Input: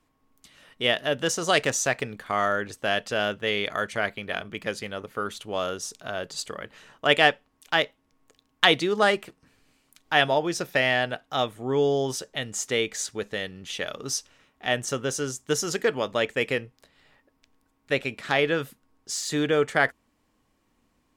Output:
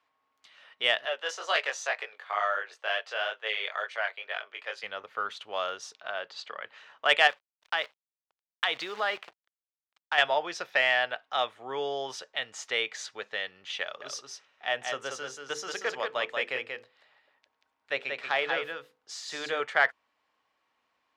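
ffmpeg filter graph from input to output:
ffmpeg -i in.wav -filter_complex "[0:a]asettb=1/sr,asplit=3[link_01][link_02][link_03];[link_01]atrim=end=1.054[link_04];[link_02]atrim=start=1.05:end=4.83,asetpts=PTS-STARTPTS,afade=type=in:duration=0.004:curve=qsin,afade=type=out:start_time=3.776:duration=0.004:curve=qsin,highpass=frequency=390:width=0.5412,highpass=frequency=390:width=1.3066,flanger=delay=18:depth=4.2:speed=2.1[link_05];[link_03]atrim=start=4.826[link_06];[link_04][link_05]acrossfade=duration=0.004:curve1=hsin:curve2=qsin[link_07];[link_07][link_06]acrossfade=duration=0.004:curve1=qsin:curve2=hsin,asettb=1/sr,asplit=3[link_08][link_09][link_10];[link_08]atrim=end=5.934[link_11];[link_09]atrim=start=5.93:end=6.64,asetpts=PTS-STARTPTS,afade=type=in:duration=0.004:curve=qsin,afade=type=out:start_time=0.706:duration=0.004:curve=qsin,lowpass=4700,lowshelf=frequency=110:gain=-11[link_12];[link_10]atrim=start=6.636[link_13];[link_11][link_12]acrossfade=duration=0.004:curve1=hsin:curve2=qsin[link_14];[link_14][link_13]acrossfade=duration=0.004:curve1=qsin:curve2=hsin,asettb=1/sr,asplit=3[link_15][link_16][link_17];[link_15]atrim=end=7.274[link_18];[link_16]atrim=start=7.27:end=10.18,asetpts=PTS-STARTPTS,afade=type=in:duration=0.004:curve=qsin,afade=type=out:start_time=2.906:duration=0.004:curve=qsin,agate=range=-33dB:threshold=-52dB:ratio=3:release=100:detection=peak,acrusher=bits=7:dc=4:mix=0:aa=0.000001,acompressor=threshold=-23dB:ratio=3:attack=3.2:release=140:knee=1:detection=peak[link_19];[link_17]atrim=start=10.176[link_20];[link_18][link_19]acrossfade=duration=0.004:curve1=hsin:curve2=qsin[link_21];[link_21][link_20]acrossfade=duration=0.004:curve1=qsin:curve2=hsin,asettb=1/sr,asplit=3[link_22][link_23][link_24];[link_22]atrim=end=13.834[link_25];[link_23]atrim=start=13.83:end=19.6,asetpts=PTS-STARTPTS,afade=type=in:duration=0.004:curve=qsin,afade=type=out:start_time=5.766:duration=0.004:curve=qsin,equalizer=frequency=2300:width=0.47:gain=-3.5,bandreject=frequency=50:width_type=h:width=6,bandreject=frequency=100:width_type=h:width=6,bandreject=frequency=150:width_type=h:width=6,bandreject=frequency=200:width_type=h:width=6,bandreject=frequency=250:width_type=h:width=6,bandreject=frequency=300:width_type=h:width=6,bandreject=frequency=350:width_type=h:width=6,bandreject=frequency=400:width_type=h:width=6,bandreject=frequency=450:width_type=h:width=6,bandreject=frequency=500:width_type=h:width=6,aecho=1:1:184:0.562,atrim=end_sample=254457[link_26];[link_24]atrim=start=19.596[link_27];[link_25][link_26]acrossfade=duration=0.004:curve1=hsin:curve2=qsin[link_28];[link_28][link_27]acrossfade=duration=0.004:curve1=qsin:curve2=hsin,highpass=63,acrossover=split=580 4900:gain=0.0708 1 0.0708[link_29][link_30][link_31];[link_29][link_30][link_31]amix=inputs=3:normalize=0,acontrast=44,volume=-5.5dB" out.wav

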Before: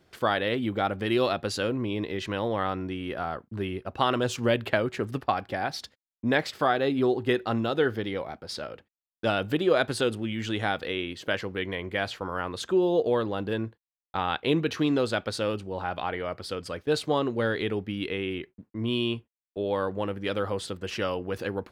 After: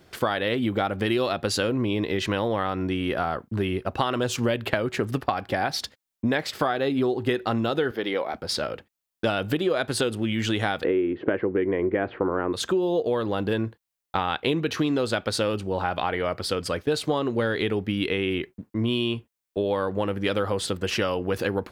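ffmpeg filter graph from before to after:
ffmpeg -i in.wav -filter_complex "[0:a]asettb=1/sr,asplit=3[link_01][link_02][link_03];[link_01]atrim=end=7.914[link_04];[link_02]atrim=start=7.91:end=8.34,asetpts=PTS-STARTPTS,afade=type=in:duration=0.004:curve=qsin,afade=type=out:start_time=0.426:duration=0.004:curve=qsin,highpass=310,equalizer=frequency=8100:width_type=o:width=1:gain=-8[link_05];[link_03]atrim=start=8.336[link_06];[link_04][link_05]acrossfade=duration=0.004:curve1=hsin:curve2=qsin[link_07];[link_07][link_06]acrossfade=duration=0.004:curve1=qsin:curve2=hsin,asettb=1/sr,asplit=3[link_08][link_09][link_10];[link_08]atrim=end=10.844[link_11];[link_09]atrim=start=10.84:end=12.53,asetpts=PTS-STARTPTS,afade=type=in:duration=0.004:curve=qsin,afade=type=out:start_time=1.686:duration=0.004:curve=qsin,lowpass=frequency=2100:width=0.5412,lowpass=frequency=2100:width=1.3066,equalizer=frequency=350:width_type=o:width=1.1:gain=14.5[link_12];[link_10]atrim=start=12.526[link_13];[link_11][link_12]acrossfade=duration=0.004:curve1=hsin:curve2=qsin[link_14];[link_14][link_13]acrossfade=duration=0.004:curve1=qsin:curve2=hsin,highshelf=frequency=9800:gain=4.5,acompressor=threshold=-29dB:ratio=6,volume=8dB" out.wav

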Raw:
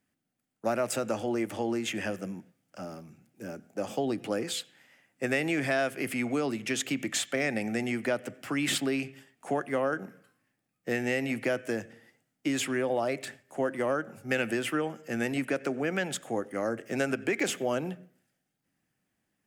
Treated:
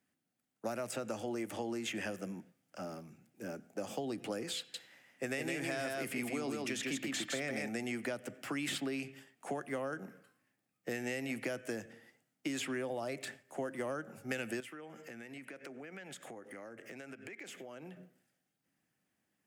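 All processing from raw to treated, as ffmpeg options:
ffmpeg -i in.wav -filter_complex "[0:a]asettb=1/sr,asplit=3[link_01][link_02][link_03];[link_01]atrim=end=4.584[link_04];[link_02]atrim=start=4.58:end=7.69,asetpts=PTS-STARTPTS,afade=type=in:duration=0.004:curve=qsin,afade=type=out:start_time=3.106:duration=0.004:curve=qsin,bandreject=frequency=301.9:width_type=h:width=4,bandreject=frequency=603.8:width_type=h:width=4,bandreject=frequency=905.7:width_type=h:width=4,bandreject=frequency=1207.6:width_type=h:width=4,bandreject=frequency=1509.5:width_type=h:width=4,bandreject=frequency=1811.4:width_type=h:width=4,bandreject=frequency=2113.3:width_type=h:width=4,bandreject=frequency=2415.2:width_type=h:width=4,bandreject=frequency=2717.1:width_type=h:width=4,bandreject=frequency=3019:width_type=h:width=4,bandreject=frequency=3320.9:width_type=h:width=4,bandreject=frequency=3622.8:width_type=h:width=4,bandreject=frequency=3924.7:width_type=h:width=4,bandreject=frequency=4226.6:width_type=h:width=4,bandreject=frequency=4528.5:width_type=h:width=4,bandreject=frequency=4830.4:width_type=h:width=4,bandreject=frequency=5132.3:width_type=h:width=4,bandreject=frequency=5434.2:width_type=h:width=4,aecho=1:1:159:0.708,atrim=end_sample=137151[link_05];[link_03]atrim=start=7.686[link_06];[link_04][link_05]acrossfade=duration=0.004:curve1=hsin:curve2=qsin[link_07];[link_07][link_06]acrossfade=duration=0.004:curve1=qsin:curve2=hsin,asettb=1/sr,asplit=3[link_08][link_09][link_10];[link_08]atrim=end=14.604[link_11];[link_09]atrim=start=14.6:end=17.97,asetpts=PTS-STARTPTS,afade=type=in:duration=0.004:curve=qsin,afade=type=out:start_time=3.366:duration=0.004:curve=qsin,equalizer=frequency=2100:width=2.1:gain=5.5,acompressor=threshold=-42dB:ratio=12:attack=3.2:release=140:knee=1:detection=peak[link_12];[link_10]atrim=start=17.966[link_13];[link_11][link_12]acrossfade=duration=0.004:curve1=hsin:curve2=qsin[link_14];[link_14][link_13]acrossfade=duration=0.004:curve1=qsin:curve2=hsin,lowshelf=frequency=75:gain=-11.5,acrossover=split=190|4500[link_15][link_16][link_17];[link_15]acompressor=threshold=-46dB:ratio=4[link_18];[link_16]acompressor=threshold=-35dB:ratio=4[link_19];[link_17]acompressor=threshold=-43dB:ratio=4[link_20];[link_18][link_19][link_20]amix=inputs=3:normalize=0,volume=-2dB" out.wav

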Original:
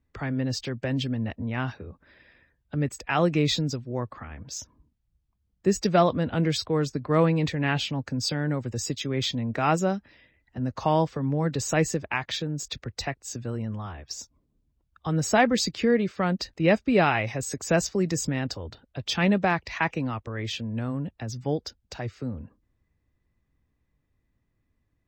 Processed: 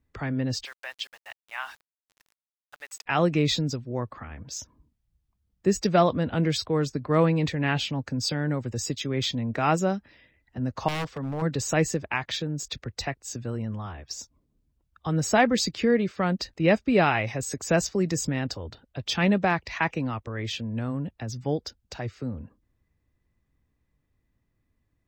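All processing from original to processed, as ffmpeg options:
ffmpeg -i in.wav -filter_complex "[0:a]asettb=1/sr,asplit=3[link_01][link_02][link_03];[link_01]atrim=end=0.654[link_04];[link_02]atrim=start=0.65:end=3.06,asetpts=PTS-STARTPTS,afade=type=in:duration=0.004:curve=qsin,afade=type=out:start_time=2.406:duration=0.004:curve=qsin,highpass=frequency=860:width=0.5412,highpass=frequency=860:width=1.3066,aeval=exprs='val(0)*gte(abs(val(0)),0.00355)':channel_layout=same[link_05];[link_03]atrim=start=3.056[link_06];[link_04][link_05]acrossfade=duration=0.004:curve1=hsin:curve2=qsin[link_07];[link_07][link_06]acrossfade=duration=0.004:curve1=qsin:curve2=hsin,asettb=1/sr,asplit=3[link_08][link_09][link_10];[link_08]atrim=end=10.884[link_11];[link_09]atrim=start=10.88:end=11.42,asetpts=PTS-STARTPTS,afade=type=in:duration=0.004:curve=qsin,afade=type=out:start_time=0.536:duration=0.004:curve=qsin,equalizer=frequency=180:width=0.56:gain=-4.5,aeval=exprs='0.0562*(abs(mod(val(0)/0.0562+3,4)-2)-1)':channel_layout=same[link_12];[link_10]atrim=start=11.416[link_13];[link_11][link_12]acrossfade=duration=0.004:curve1=hsin:curve2=qsin[link_14];[link_14][link_13]acrossfade=duration=0.004:curve1=qsin:curve2=hsin" out.wav

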